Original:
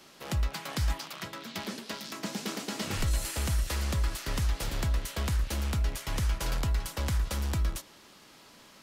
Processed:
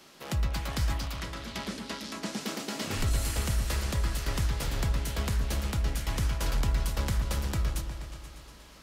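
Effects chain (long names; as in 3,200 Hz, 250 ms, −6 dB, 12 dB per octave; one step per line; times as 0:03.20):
0:01.19–0:02.41: low-pass filter 12,000 Hz 24 dB per octave
on a send: echo whose low-pass opens from repeat to repeat 120 ms, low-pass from 400 Hz, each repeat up 2 octaves, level −6 dB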